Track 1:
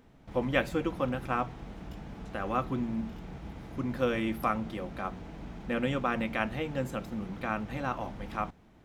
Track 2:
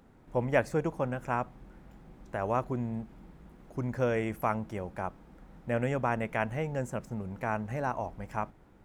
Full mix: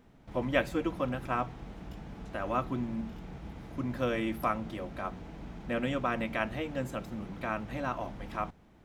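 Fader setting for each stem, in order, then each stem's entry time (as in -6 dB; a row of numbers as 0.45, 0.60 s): -1.5, -10.5 dB; 0.00, 0.00 s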